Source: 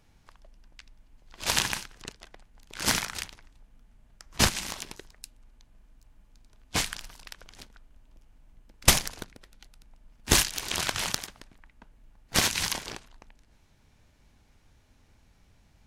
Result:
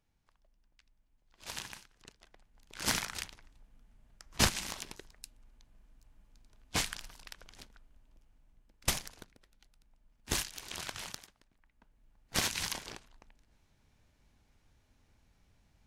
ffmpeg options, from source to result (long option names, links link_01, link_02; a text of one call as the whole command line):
ffmpeg -i in.wav -af "volume=7.5dB,afade=type=in:start_time=1.93:duration=1.22:silence=0.251189,afade=type=out:start_time=7.52:duration=1.35:silence=0.421697,afade=type=out:start_time=10.96:duration=0.42:silence=0.446684,afade=type=in:start_time=11.38:duration=1.12:silence=0.251189" out.wav